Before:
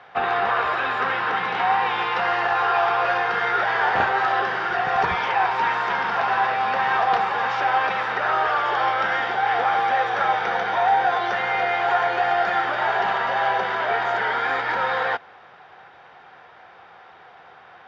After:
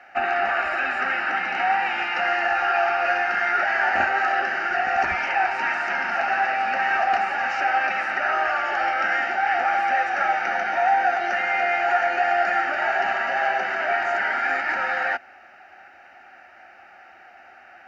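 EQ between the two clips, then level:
parametric band 2,800 Hz +9.5 dB 0.41 octaves
high-shelf EQ 4,500 Hz +10 dB
phaser with its sweep stopped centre 690 Hz, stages 8
0.0 dB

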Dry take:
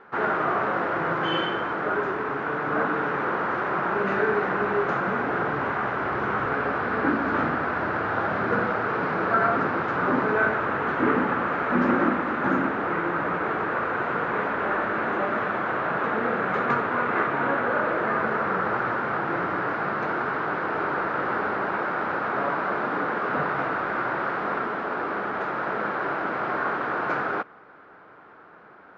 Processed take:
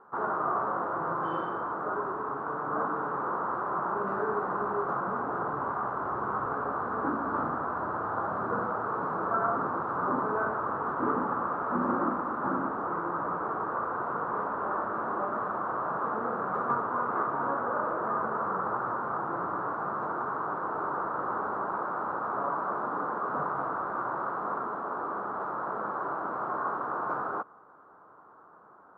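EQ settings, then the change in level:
high shelf with overshoot 1,600 Hz −12 dB, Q 3
−8.5 dB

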